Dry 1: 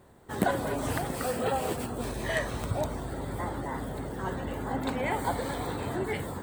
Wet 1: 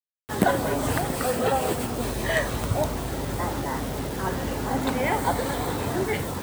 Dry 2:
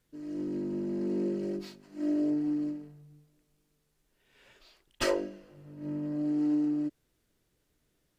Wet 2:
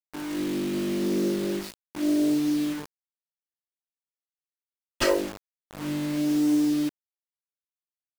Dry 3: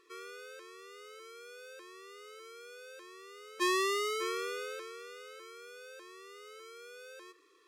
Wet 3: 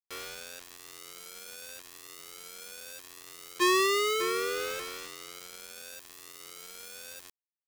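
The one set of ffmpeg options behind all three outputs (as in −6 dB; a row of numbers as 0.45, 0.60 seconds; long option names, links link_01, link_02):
-af "acrusher=bits=6:mix=0:aa=0.000001,volume=5.5dB"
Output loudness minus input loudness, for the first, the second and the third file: +6.0, +6.0, +5.0 LU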